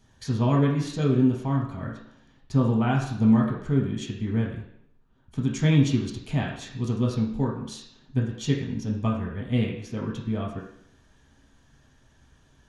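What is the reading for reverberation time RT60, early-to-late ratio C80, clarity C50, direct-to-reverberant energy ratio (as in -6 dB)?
0.70 s, 7.5 dB, 4.5 dB, -3.0 dB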